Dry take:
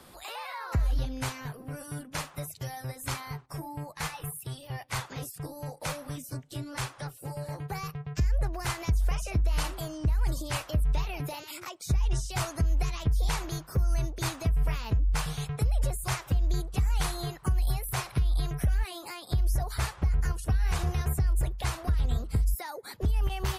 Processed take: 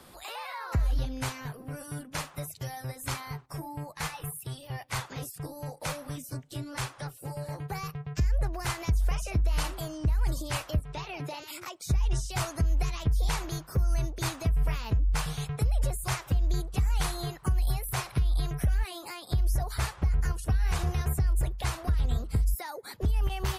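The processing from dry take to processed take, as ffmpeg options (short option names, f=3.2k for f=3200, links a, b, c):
-filter_complex "[0:a]asettb=1/sr,asplit=3[a][b][c];[a]atrim=end=10.794[d];[b]atrim=start=10.79:end=11.42,asetpts=PTS-STARTPTS,afade=t=in:d=0.004:c=qsin,afade=t=out:st=0.626:d=0.004:c=qsin,highpass=140,lowpass=7.2k[e];[c]atrim=start=11.416[f];[d][e]acrossfade=d=0.004:c1=hsin:c2=qsin[g];[g][f]acrossfade=d=0.004:c1=qsin:c2=hsin"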